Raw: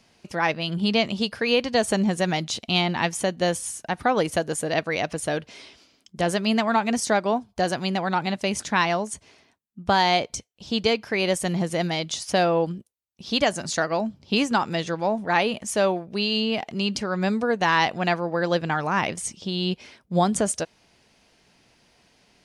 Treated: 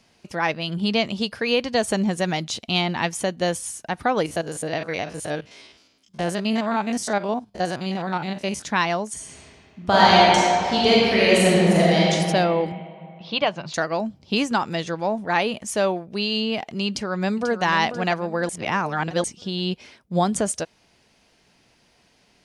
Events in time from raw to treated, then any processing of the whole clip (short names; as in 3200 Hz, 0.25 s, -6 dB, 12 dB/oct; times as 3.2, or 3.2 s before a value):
4.26–8.62 stepped spectrum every 50 ms
9.12–12.01 reverb throw, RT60 2.5 s, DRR -7 dB
12.72–13.74 speaker cabinet 150–3900 Hz, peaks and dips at 150 Hz +6 dB, 250 Hz -8 dB, 390 Hz -4 dB, 1000 Hz +6 dB, 1800 Hz -5 dB, 2600 Hz +4 dB
16.88–17.64 echo throw 0.49 s, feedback 40%, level -10 dB
18.49–19.24 reverse